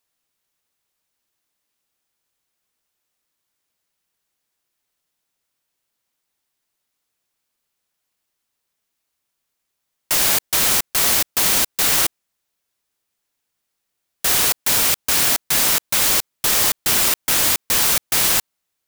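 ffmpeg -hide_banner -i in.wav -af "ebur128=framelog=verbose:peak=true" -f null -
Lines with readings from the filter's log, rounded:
Integrated loudness:
  I:         -15.5 LUFS
  Threshold: -25.6 LUFS
Loudness range:
  LRA:         5.3 LU
  Threshold: -37.4 LUFS
  LRA low:   -20.6 LUFS
  LRA high:  -15.3 LUFS
True peak:
  Peak:       -3.3 dBFS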